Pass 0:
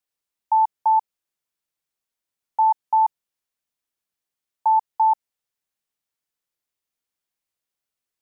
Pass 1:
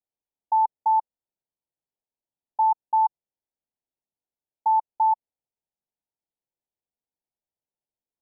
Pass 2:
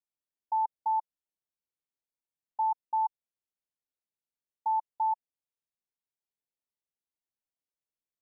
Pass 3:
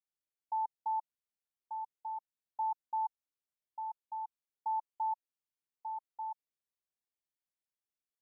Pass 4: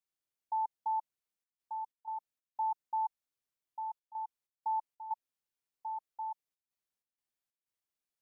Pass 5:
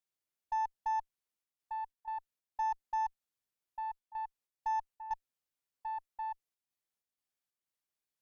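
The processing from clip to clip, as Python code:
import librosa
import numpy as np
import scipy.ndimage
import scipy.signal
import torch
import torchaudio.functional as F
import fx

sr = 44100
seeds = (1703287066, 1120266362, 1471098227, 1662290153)

y1 = scipy.signal.sosfilt(scipy.signal.butter(16, 960.0, 'lowpass', fs=sr, output='sos'), x)
y1 = F.gain(torch.from_numpy(y1), -2.5).numpy()
y2 = fx.peak_eq(y1, sr, hz=740.0, db=-4.0, octaves=0.26)
y2 = F.gain(torch.from_numpy(y2), -7.0).numpy()
y3 = y2 + 10.0 ** (-6.0 / 20.0) * np.pad(y2, (int(1189 * sr / 1000.0), 0))[:len(y2)]
y3 = F.gain(torch.from_numpy(y3), -6.0).numpy()
y4 = fx.step_gate(y3, sr, bpm=94, pattern='xxxxxxxxx.xx.xx.', floor_db=-12.0, edge_ms=4.5)
y4 = F.gain(torch.from_numpy(y4), 1.0).numpy()
y5 = fx.cheby_harmonics(y4, sr, harmonics=(2, 5, 6, 7), levels_db=(-20, -34, -35, -31), full_scale_db=-28.0)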